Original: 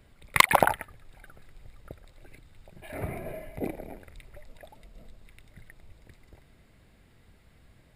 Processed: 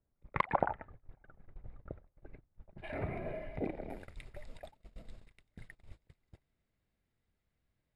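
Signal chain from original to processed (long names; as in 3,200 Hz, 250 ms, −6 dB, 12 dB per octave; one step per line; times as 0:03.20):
noise gate −47 dBFS, range −27 dB
low-pass filter 1,100 Hz 12 dB per octave, from 0:02.78 3,100 Hz, from 0:03.90 8,500 Hz
downward compressor 1.5 to 1, threshold −49 dBFS, peak gain reduction 12.5 dB
level +3 dB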